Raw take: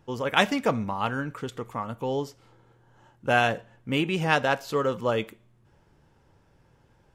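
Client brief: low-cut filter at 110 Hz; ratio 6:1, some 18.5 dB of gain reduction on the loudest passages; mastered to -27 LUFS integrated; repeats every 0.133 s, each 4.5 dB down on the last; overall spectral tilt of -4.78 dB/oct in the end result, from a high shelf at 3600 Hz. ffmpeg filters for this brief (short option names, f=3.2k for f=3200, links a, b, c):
-af "highpass=110,highshelf=f=3.6k:g=-9,acompressor=threshold=-38dB:ratio=6,aecho=1:1:133|266|399|532|665|798|931|1064|1197:0.596|0.357|0.214|0.129|0.0772|0.0463|0.0278|0.0167|0.01,volume=13.5dB"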